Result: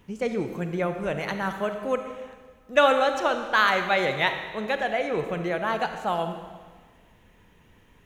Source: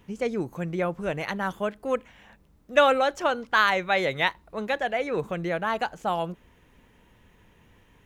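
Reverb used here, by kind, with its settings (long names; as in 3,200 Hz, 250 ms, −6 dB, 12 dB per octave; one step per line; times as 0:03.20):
comb and all-pass reverb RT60 1.5 s, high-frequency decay 1×, pre-delay 5 ms, DRR 6.5 dB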